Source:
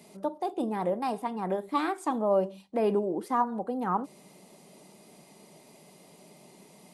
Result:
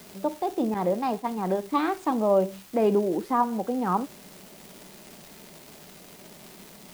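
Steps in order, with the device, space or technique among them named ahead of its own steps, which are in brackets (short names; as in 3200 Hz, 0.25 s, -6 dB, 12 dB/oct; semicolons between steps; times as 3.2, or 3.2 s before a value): 78 rpm shellac record (BPF 100–5400 Hz; crackle 340/s -38 dBFS; white noise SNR 23 dB); 0.74–1.38 expander -32 dBFS; low shelf 430 Hz +4 dB; gain +2 dB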